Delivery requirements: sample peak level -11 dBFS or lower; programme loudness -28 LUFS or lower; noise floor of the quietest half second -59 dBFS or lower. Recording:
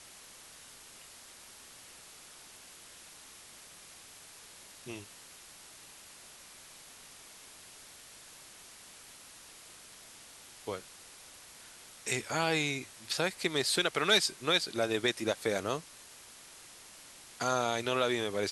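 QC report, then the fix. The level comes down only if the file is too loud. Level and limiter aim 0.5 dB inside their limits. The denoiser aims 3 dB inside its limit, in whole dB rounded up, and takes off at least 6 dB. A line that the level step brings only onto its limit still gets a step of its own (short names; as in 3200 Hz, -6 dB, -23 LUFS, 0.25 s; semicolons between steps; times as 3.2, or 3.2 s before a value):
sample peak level -12.5 dBFS: OK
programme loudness -31.5 LUFS: OK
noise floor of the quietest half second -53 dBFS: fail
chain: denoiser 9 dB, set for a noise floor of -53 dBFS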